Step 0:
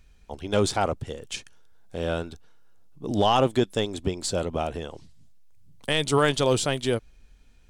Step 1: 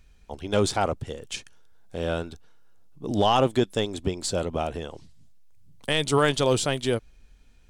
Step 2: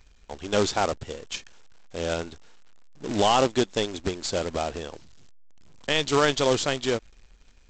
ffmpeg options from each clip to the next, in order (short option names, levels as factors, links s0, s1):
-af anull
-af "equalizer=f=120:w=1:g=-6,aresample=16000,acrusher=bits=2:mode=log:mix=0:aa=0.000001,aresample=44100"